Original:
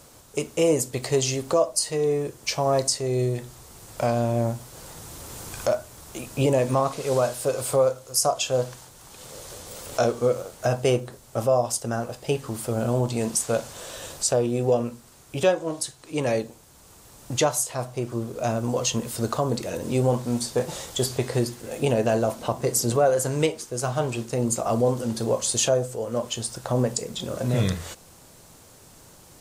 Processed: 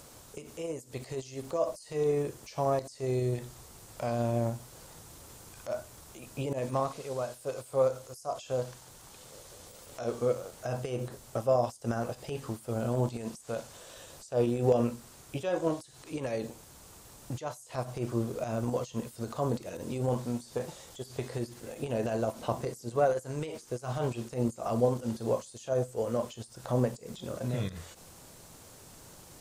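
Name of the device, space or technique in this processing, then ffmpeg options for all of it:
de-esser from a sidechain: -filter_complex "[0:a]asplit=2[link_01][link_02];[link_02]highpass=6100,apad=whole_len=1296818[link_03];[link_01][link_03]sidechaincompress=threshold=-56dB:ratio=6:attack=0.68:release=61,volume=4.5dB"

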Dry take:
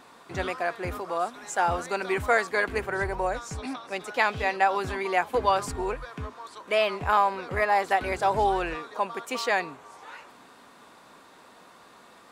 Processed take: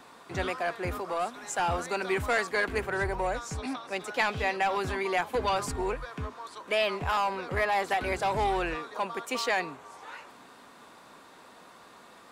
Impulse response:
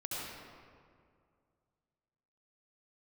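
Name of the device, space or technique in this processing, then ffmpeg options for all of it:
one-band saturation: -filter_complex "[0:a]acrossover=split=290|2000[link_01][link_02][link_03];[link_02]asoftclip=type=tanh:threshold=-24.5dB[link_04];[link_01][link_04][link_03]amix=inputs=3:normalize=0"

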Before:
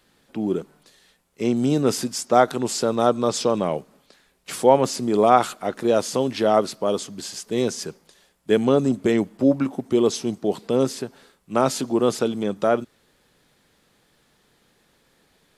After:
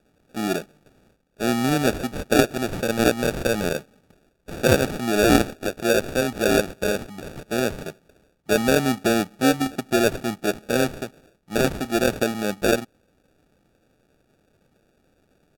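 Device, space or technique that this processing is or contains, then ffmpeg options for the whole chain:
crushed at another speed: -af "asetrate=55125,aresample=44100,acrusher=samples=34:mix=1:aa=0.000001,asetrate=35280,aresample=44100,volume=-1dB"

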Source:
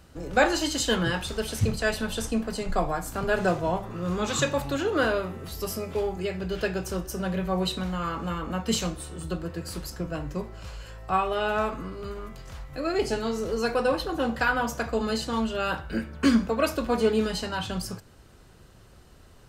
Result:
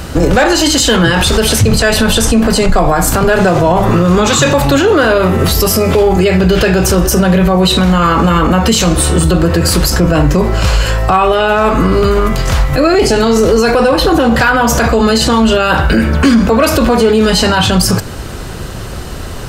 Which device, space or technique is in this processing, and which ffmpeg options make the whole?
loud club master: -af "acompressor=threshold=-29dB:ratio=2,asoftclip=type=hard:threshold=-20.5dB,alimiter=level_in=30.5dB:limit=-1dB:release=50:level=0:latency=1,volume=-1dB"

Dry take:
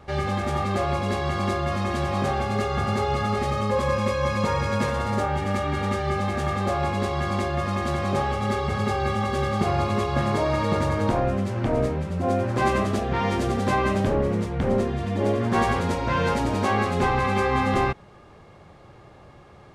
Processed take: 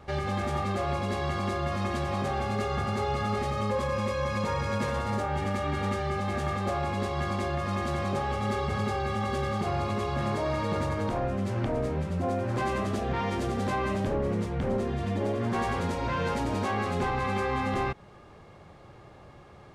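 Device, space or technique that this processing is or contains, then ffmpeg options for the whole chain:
soft clipper into limiter: -af "asoftclip=type=tanh:threshold=-13dB,alimiter=limit=-19dB:level=0:latency=1:release=158,volume=-2dB"

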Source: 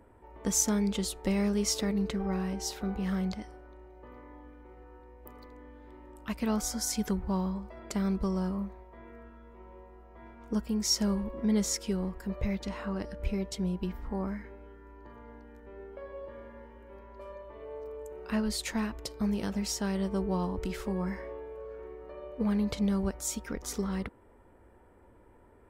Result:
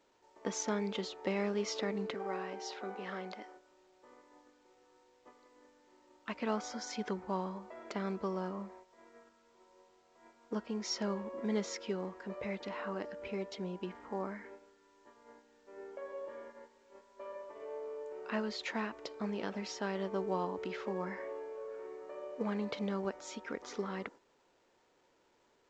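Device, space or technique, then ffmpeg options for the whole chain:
telephone: -filter_complex "[0:a]agate=range=-12dB:threshold=-47dB:ratio=16:detection=peak,asettb=1/sr,asplit=3[link_01][link_02][link_03];[link_01]atrim=end=2.144[link_04];[link_02]atrim=start=2.14:end=3.57,asetpts=PTS-STARTPTS,afade=type=in:duration=0.004:curve=qsin,afade=type=out:start_time=1.426:duration=0.004:curve=qsin,highpass=290[link_05];[link_03]atrim=start=3.566[link_06];[link_04][link_05]acrossfade=duration=0.004:curve1=hsin:curve2=qsin[link_07];[link_07][link_06]acrossfade=duration=0.004:curve1=qsin:curve2=hsin,highpass=340,lowpass=3300" -ar 16000 -c:a pcm_alaw

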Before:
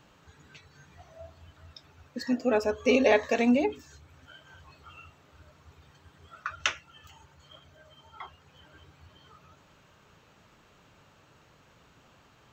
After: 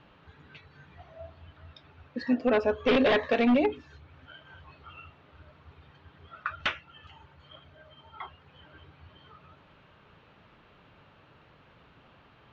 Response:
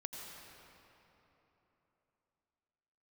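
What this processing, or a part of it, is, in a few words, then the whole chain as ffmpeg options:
synthesiser wavefolder: -af "aeval=exprs='0.119*(abs(mod(val(0)/0.119+3,4)-2)-1)':channel_layout=same,lowpass=frequency=3700:width=0.5412,lowpass=frequency=3700:width=1.3066,volume=2dB"

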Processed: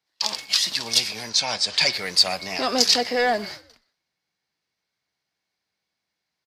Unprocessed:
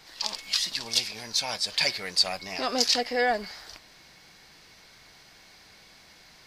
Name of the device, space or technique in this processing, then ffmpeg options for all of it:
one-band saturation: -filter_complex "[0:a]highpass=79,agate=range=-34dB:threshold=-41dB:ratio=16:detection=peak,asettb=1/sr,asplit=3[link_01][link_02][link_03];[link_01]atrim=end=1.294[link_04];[link_02]atrim=start=1.29:end=1.93,asetpts=PTS-STARTPTS,afade=type=in:duration=0.004:curve=qsin,afade=type=out:start_time=0.636:duration=0.004:curve=qsin,lowpass=frequency=8300:width=0.5412,lowpass=frequency=8300:width=1.3066[link_05];[link_03]atrim=start=1.926[link_06];[link_04][link_05]acrossfade=duration=0.004:curve1=hsin:curve2=qsin[link_07];[link_07][link_06]acrossfade=duration=0.004:curve1=qsin:curve2=hsin,acrossover=split=260|3900[link_08][link_09][link_10];[link_09]asoftclip=type=tanh:threshold=-21.5dB[link_11];[link_08][link_11][link_10]amix=inputs=3:normalize=0,asplit=4[link_12][link_13][link_14][link_15];[link_13]adelay=122,afreqshift=-60,volume=-22.5dB[link_16];[link_14]adelay=244,afreqshift=-120,volume=-30.5dB[link_17];[link_15]adelay=366,afreqshift=-180,volume=-38.4dB[link_18];[link_12][link_16][link_17][link_18]amix=inputs=4:normalize=0,volume=6dB"

